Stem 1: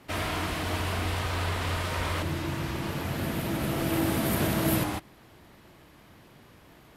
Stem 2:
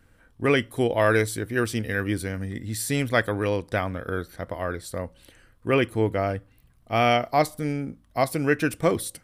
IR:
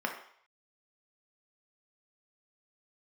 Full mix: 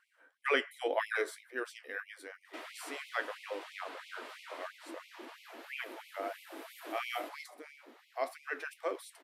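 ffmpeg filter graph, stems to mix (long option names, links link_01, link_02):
-filter_complex "[0:a]acompressor=threshold=-47dB:ratio=2,adelay=2450,volume=1.5dB[link_01];[1:a]highpass=380,volume=-1.5dB,afade=type=out:start_time=0.85:duration=0.66:silence=0.421697,asplit=2[link_02][link_03];[link_03]volume=-17dB[link_04];[2:a]atrim=start_sample=2205[link_05];[link_04][link_05]afir=irnorm=-1:irlink=0[link_06];[link_01][link_02][link_06]amix=inputs=3:normalize=0,flanger=delay=7.3:depth=6.8:regen=61:speed=1.9:shape=triangular,highshelf=frequency=6100:gain=-9.5,afftfilt=real='re*gte(b*sr/1024,220*pow(2100/220,0.5+0.5*sin(2*PI*3*pts/sr)))':imag='im*gte(b*sr/1024,220*pow(2100/220,0.5+0.5*sin(2*PI*3*pts/sr)))':win_size=1024:overlap=0.75"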